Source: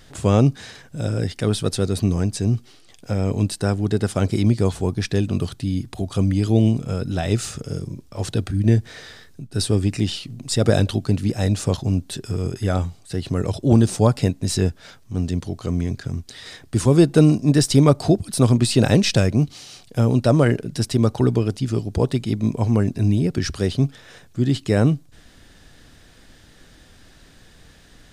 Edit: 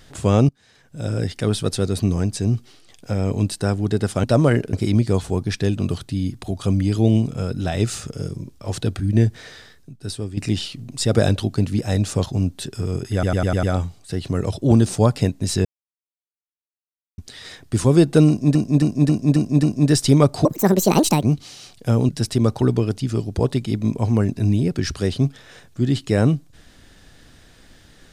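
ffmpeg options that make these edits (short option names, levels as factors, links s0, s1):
-filter_complex "[0:a]asplit=20[s0][s1][s2][s3][s4][s5][s6][s7][s8][s9][s10][s11][s12][s13][s14][s15][s16][s17][s18][s19];[s0]atrim=end=0.49,asetpts=PTS-STARTPTS,afade=t=out:st=0.486:d=0.004:c=hsin:silence=0.0707946[s20];[s1]atrim=start=0.49:end=4.242,asetpts=PTS-STARTPTS,afade=t=in:d=0.63:c=qua:silence=0.0707946[s21];[s2]atrim=start=20.188:end=20.682[s22];[s3]atrim=start=4.238:end=9.88,asetpts=PTS-STARTPTS,afade=t=out:st=4.602:d=1.04:silence=0.237137[s23];[s4]atrim=start=9.88:end=12.742,asetpts=PTS-STARTPTS,afade=t=in:d=0.004:c=hsin:silence=0.237137[s24];[s5]atrim=start=12.638:end=12.742[s25];[s6]atrim=start=12.638:end=12.742[s26];[s7]atrim=start=12.638:end=12.742[s27];[s8]atrim=start=12.638:end=12.742[s28];[s9]atrim=start=12.638:end=14.66,asetpts=PTS-STARTPTS,afade=t=out:st=2.018:d=0.004:c=hsin[s29];[s10]atrim=start=14.66:end=16.19,asetpts=PTS-STARTPTS,volume=0[s30];[s11]atrim=start=16.19:end=17.562,asetpts=PTS-STARTPTS,afade=t=in:d=0.004:c=hsin[s31];[s12]atrim=start=17.288:end=17.562[s32];[s13]atrim=start=17.288:end=17.562[s33];[s14]atrim=start=17.288:end=17.562[s34];[s15]atrim=start=17.288:end=17.562[s35];[s16]atrim=start=17.288:end=18.114[s36];[s17]atrim=start=18.11:end=19.32,asetpts=PTS-STARTPTS,asetrate=69237,aresample=44100[s37];[s18]atrim=start=19.316:end=20.192[s38];[s19]atrim=start=20.678[s39];[s20][s21]concat=n=2:v=0:a=1[s40];[s40][s22]acrossfade=d=0.004:c1=hsin:c2=hsin[s41];[s23][s24]concat=n=2:v=0:a=1[s42];[s41][s42]acrossfade=d=0.004:c1=hsin:c2=hsin[s43];[s43][s25]acrossfade=d=0.004:c1=hsin:c2=hsin[s44];[s44][s26]acrossfade=d=0.004:c1=hsin:c2=hsin[s45];[s45][s27]acrossfade=d=0.004:c1=hsin:c2=hsin[s46];[s46][s28]acrossfade=d=0.004:c1=hsin:c2=hsin[s47];[s29][s30][s31]concat=n=3:v=0:a=1[s48];[s47][s48]acrossfade=d=0.004:c1=hsin:c2=hsin[s49];[s49][s32]acrossfade=d=0.004:c1=hsin:c2=hsin[s50];[s50][s33]acrossfade=d=0.004:c1=hsin:c2=hsin[s51];[s51][s34]acrossfade=d=0.004:c1=hsin:c2=hsin[s52];[s52][s35]acrossfade=d=0.004:c1=hsin:c2=hsin[s53];[s53][s36]acrossfade=d=0.004:c1=hsin:c2=hsin[s54];[s54][s37]acrossfade=d=0.004:c1=hsin:c2=hsin[s55];[s55][s38]acrossfade=d=0.004:c1=hsin:c2=hsin[s56];[s56][s39]acrossfade=d=0.004:c1=hsin:c2=hsin"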